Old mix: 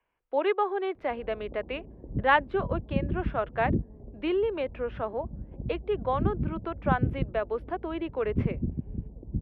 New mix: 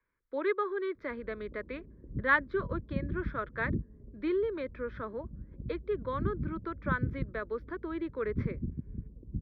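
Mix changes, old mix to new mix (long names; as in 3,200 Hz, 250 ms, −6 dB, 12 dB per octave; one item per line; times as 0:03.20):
background −5.0 dB
master: add phaser with its sweep stopped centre 2,800 Hz, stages 6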